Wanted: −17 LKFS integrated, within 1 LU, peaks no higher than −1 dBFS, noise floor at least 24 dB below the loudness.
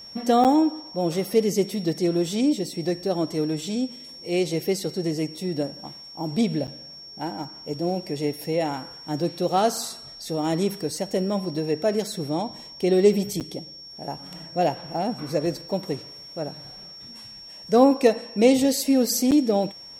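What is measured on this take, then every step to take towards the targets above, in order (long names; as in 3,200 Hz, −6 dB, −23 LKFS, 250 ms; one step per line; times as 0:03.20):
number of dropouts 4; longest dropout 8.1 ms; interfering tone 5,500 Hz; level of the tone −40 dBFS; integrated loudness −24.5 LKFS; sample peak −5.5 dBFS; target loudness −17.0 LKFS
→ repair the gap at 0:00.44/0:06.67/0:13.40/0:19.31, 8.1 ms
notch filter 5,500 Hz, Q 30
level +7.5 dB
brickwall limiter −1 dBFS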